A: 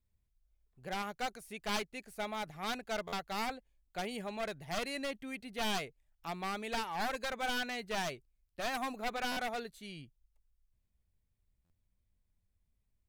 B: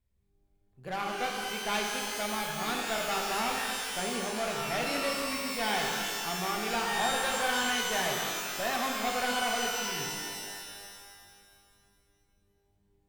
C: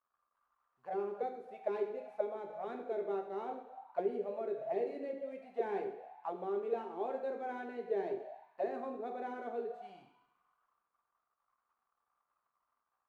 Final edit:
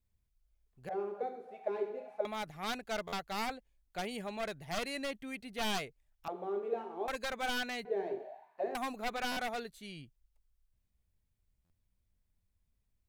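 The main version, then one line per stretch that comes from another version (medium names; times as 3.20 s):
A
0.89–2.25 s: from C
6.28–7.08 s: from C
7.85–8.75 s: from C
not used: B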